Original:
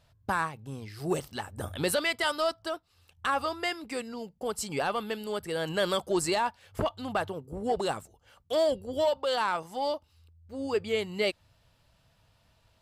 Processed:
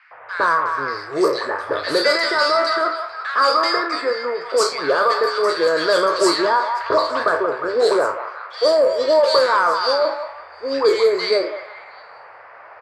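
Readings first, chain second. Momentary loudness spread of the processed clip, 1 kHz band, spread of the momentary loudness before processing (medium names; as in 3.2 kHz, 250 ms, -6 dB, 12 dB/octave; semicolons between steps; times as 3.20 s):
9 LU, +13.5 dB, 10 LU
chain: spectral sustain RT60 0.33 s; peaking EQ 4.7 kHz +14.5 dB 0.33 oct; doubling 29 ms -13 dB; in parallel at +2 dB: peak limiter -22.5 dBFS, peak gain reduction 10.5 dB; on the sum: treble shelf 11 kHz +7.5 dB; static phaser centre 780 Hz, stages 6; on a send: repeats whose band climbs or falls 178 ms, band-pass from 920 Hz, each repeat 0.7 oct, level -6.5 dB; on the sum: band noise 480–2200 Hz -52 dBFS; overdrive pedal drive 22 dB, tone 1.9 kHz, clips at -1.5 dBFS; Bessel high-pass 240 Hz, order 2; bands offset in time highs, lows 110 ms, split 1.8 kHz; level-controlled noise filter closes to 1.5 kHz, open at -9.5 dBFS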